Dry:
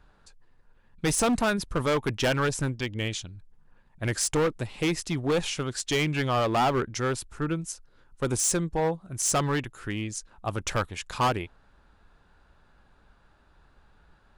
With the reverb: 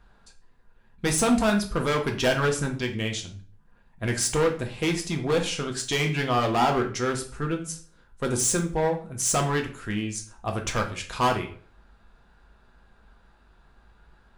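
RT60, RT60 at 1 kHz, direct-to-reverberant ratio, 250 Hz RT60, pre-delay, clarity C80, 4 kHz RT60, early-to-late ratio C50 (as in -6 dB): 0.45 s, 0.40 s, 2.5 dB, 0.50 s, 3 ms, 15.0 dB, 0.35 s, 10.5 dB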